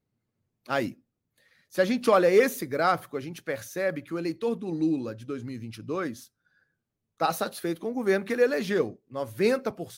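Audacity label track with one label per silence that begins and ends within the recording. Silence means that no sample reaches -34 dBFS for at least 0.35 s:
0.900000	1.750000	silence
6.190000	7.210000	silence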